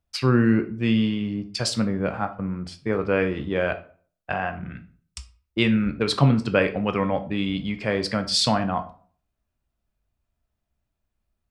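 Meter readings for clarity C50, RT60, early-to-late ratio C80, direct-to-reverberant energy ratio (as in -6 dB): 14.0 dB, 0.45 s, 18.5 dB, 7.0 dB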